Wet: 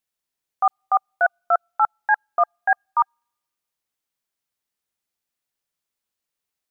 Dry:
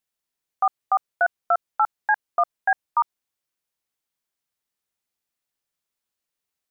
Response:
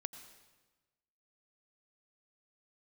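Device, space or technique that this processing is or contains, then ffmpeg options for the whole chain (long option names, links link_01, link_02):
keyed gated reverb: -filter_complex "[0:a]asplit=3[link_01][link_02][link_03];[1:a]atrim=start_sample=2205[link_04];[link_02][link_04]afir=irnorm=-1:irlink=0[link_05];[link_03]apad=whole_len=295724[link_06];[link_05][link_06]sidechaingate=range=-44dB:threshold=-16dB:ratio=16:detection=peak,volume=4dB[link_07];[link_01][link_07]amix=inputs=2:normalize=0"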